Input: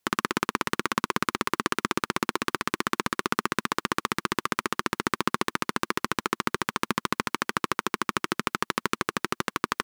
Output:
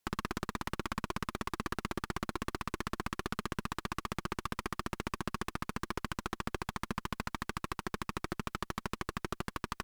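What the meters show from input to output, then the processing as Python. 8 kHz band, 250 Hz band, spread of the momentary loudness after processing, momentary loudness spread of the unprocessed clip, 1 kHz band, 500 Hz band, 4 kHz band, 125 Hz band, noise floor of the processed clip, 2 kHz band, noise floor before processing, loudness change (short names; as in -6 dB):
-12.0 dB, -8.5 dB, 2 LU, 2 LU, -11.0 dB, -10.5 dB, -12.0 dB, -2.5 dB, -71 dBFS, -12.5 dB, -77 dBFS, -10.5 dB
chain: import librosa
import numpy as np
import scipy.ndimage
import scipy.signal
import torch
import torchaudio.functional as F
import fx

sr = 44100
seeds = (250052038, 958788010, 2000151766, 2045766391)

y = fx.tube_stage(x, sr, drive_db=28.0, bias=0.8)
y = y * librosa.db_to_amplitude(1.0)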